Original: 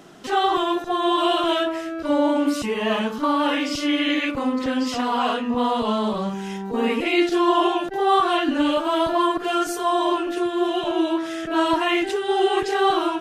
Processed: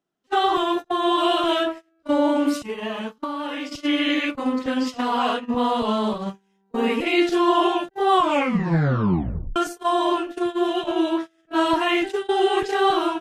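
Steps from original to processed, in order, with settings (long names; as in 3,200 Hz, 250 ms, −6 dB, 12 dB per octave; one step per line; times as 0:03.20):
noise gate −24 dBFS, range −36 dB
0:02.61–0:03.78: downward compressor 6 to 1, threshold −26 dBFS, peak gain reduction 9.5 dB
0:08.11: tape stop 1.45 s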